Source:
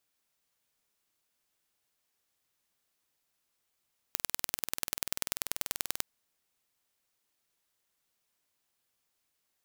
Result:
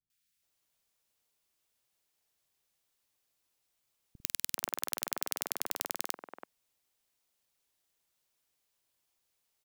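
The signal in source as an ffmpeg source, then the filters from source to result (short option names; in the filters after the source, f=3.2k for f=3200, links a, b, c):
-f lavfi -i "aevalsrc='0.794*eq(mod(n,2151),0)*(0.5+0.5*eq(mod(n,4302),0))':d=1.87:s=44100"
-filter_complex "[0:a]acrossover=split=230|1500[a][b][c];[c]adelay=100[d];[b]adelay=430[e];[a][e][d]amix=inputs=3:normalize=0"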